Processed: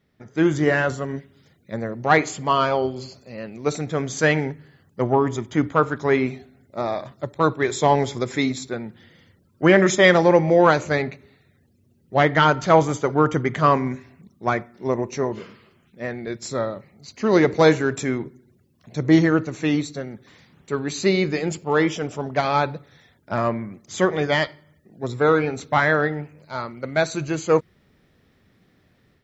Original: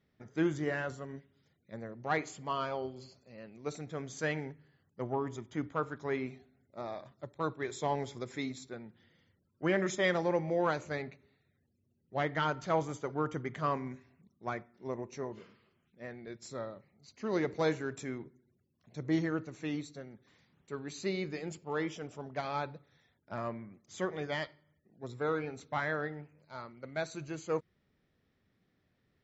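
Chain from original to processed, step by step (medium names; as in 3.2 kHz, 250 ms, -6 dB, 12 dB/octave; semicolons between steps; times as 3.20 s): level rider gain up to 8 dB; trim +7.5 dB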